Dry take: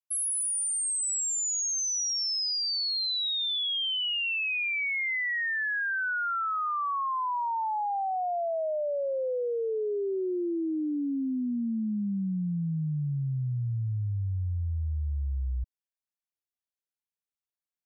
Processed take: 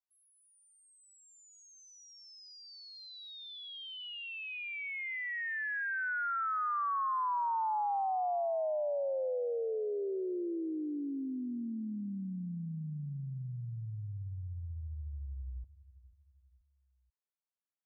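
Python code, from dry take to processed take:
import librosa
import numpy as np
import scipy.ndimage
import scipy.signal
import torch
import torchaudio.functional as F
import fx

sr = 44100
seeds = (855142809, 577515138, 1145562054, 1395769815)

y = scipy.signal.sosfilt(scipy.signal.butter(2, 1300.0, 'lowpass', fs=sr, output='sos'), x)
y = fx.low_shelf(y, sr, hz=380.0, db=-11.5)
y = fx.echo_feedback(y, sr, ms=487, feedback_pct=42, wet_db=-18)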